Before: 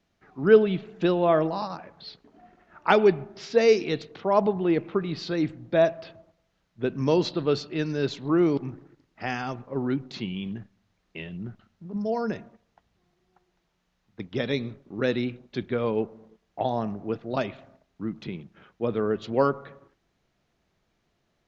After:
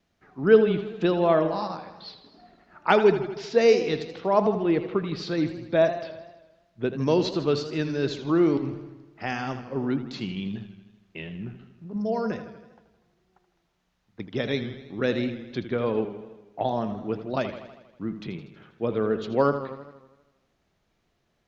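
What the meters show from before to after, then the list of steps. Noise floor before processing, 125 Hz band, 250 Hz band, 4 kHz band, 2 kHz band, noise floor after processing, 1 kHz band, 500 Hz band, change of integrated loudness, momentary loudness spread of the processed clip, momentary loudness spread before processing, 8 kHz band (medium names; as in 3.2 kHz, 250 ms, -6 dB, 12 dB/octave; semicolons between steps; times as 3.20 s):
-74 dBFS, +0.5 dB, +0.5 dB, +0.5 dB, +0.5 dB, -72 dBFS, +0.5 dB, +0.5 dB, +0.5 dB, 20 LU, 17 LU, no reading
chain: wow and flutter 16 cents; modulated delay 80 ms, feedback 62%, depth 90 cents, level -11.5 dB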